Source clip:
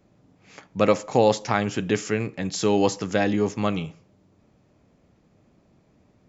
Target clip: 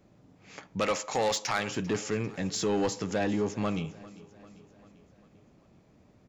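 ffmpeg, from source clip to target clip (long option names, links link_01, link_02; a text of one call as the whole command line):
ffmpeg -i in.wav -filter_complex "[0:a]asettb=1/sr,asplit=3[link_01][link_02][link_03];[link_01]atrim=end=0.804[link_04];[link_02]atrim=start=0.8:end=1.71,asetpts=PTS-STARTPTS,afade=type=in:duration=0.004:curve=qsin,afade=type=out:start_time=0.906:duration=0.004:curve=qsin,tiltshelf=frequency=660:gain=-8[link_05];[link_03]atrim=start=1.706[link_06];[link_04][link_05]acrossfade=duration=0.004:curve1=hsin:curve2=qsin[link_07];[link_07][link_06]acrossfade=duration=0.004:curve1=qsin:curve2=hsin,asplit=2[link_08][link_09];[link_09]acompressor=threshold=-32dB:ratio=6,volume=-1.5dB[link_10];[link_08][link_10]amix=inputs=2:normalize=0,asoftclip=type=tanh:threshold=-15.5dB,aecho=1:1:395|790|1185|1580|1975:0.1|0.057|0.0325|0.0185|0.0106,volume=-5.5dB" out.wav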